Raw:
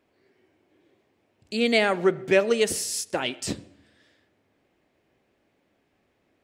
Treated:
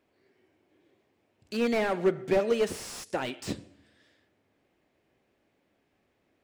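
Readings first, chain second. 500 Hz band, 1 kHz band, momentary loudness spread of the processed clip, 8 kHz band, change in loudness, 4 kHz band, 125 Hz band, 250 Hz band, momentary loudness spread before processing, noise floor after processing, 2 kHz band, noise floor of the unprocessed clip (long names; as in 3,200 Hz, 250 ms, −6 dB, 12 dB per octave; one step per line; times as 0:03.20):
−4.0 dB, −4.0 dB, 12 LU, −12.5 dB, −5.5 dB, −10.5 dB, −3.0 dB, −3.5 dB, 12 LU, −74 dBFS, −9.0 dB, −71 dBFS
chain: slew-rate limiting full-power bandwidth 82 Hz
level −3 dB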